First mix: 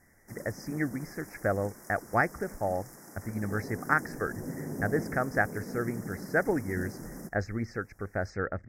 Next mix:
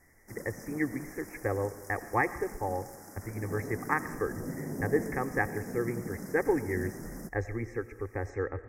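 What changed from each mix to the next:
speech: add static phaser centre 960 Hz, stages 8; reverb: on, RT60 1.1 s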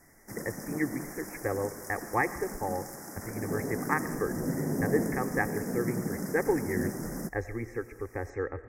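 background +6.5 dB; master: add peaking EQ 100 Hz -4 dB 0.35 oct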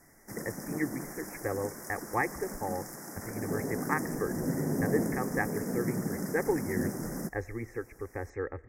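speech: send -10.5 dB

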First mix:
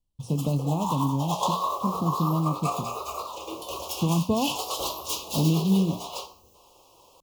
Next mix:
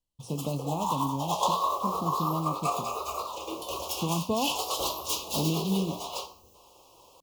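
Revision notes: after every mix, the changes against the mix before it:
speech: add bass shelf 260 Hz -10.5 dB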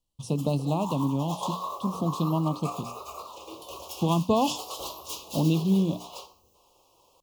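speech +5.5 dB; background -6.5 dB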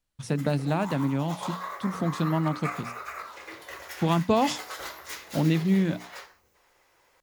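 background -4.0 dB; master: remove elliptic band-stop 1.1–2.8 kHz, stop band 50 dB

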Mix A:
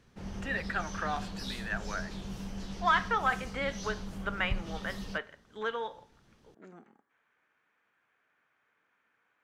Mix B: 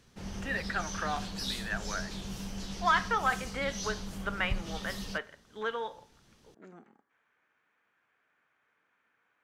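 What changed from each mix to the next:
background: add treble shelf 2.9 kHz +8.5 dB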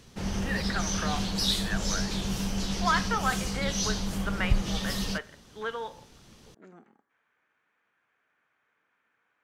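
background +9.0 dB

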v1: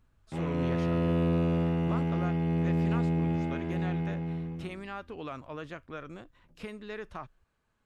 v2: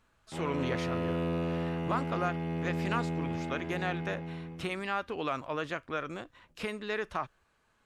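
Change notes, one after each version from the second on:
speech +8.5 dB; master: add bass shelf 320 Hz -8.5 dB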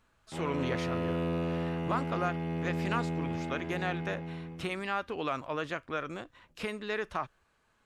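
no change

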